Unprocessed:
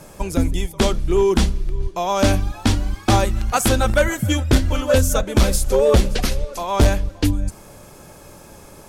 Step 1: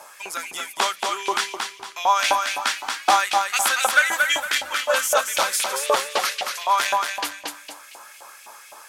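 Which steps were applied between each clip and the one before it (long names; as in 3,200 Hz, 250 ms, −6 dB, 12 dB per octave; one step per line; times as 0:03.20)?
feedback echo with a high-pass in the loop 229 ms, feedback 34%, high-pass 150 Hz, level −4.5 dB
auto-filter high-pass saw up 3.9 Hz 750–2,700 Hz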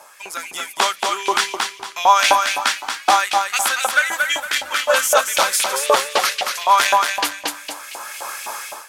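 in parallel at −11 dB: dead-zone distortion −34.5 dBFS
on the sum: automatic gain control gain up to 16 dB
level −1 dB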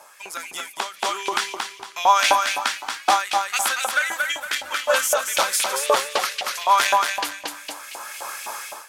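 every ending faded ahead of time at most 140 dB per second
level −3 dB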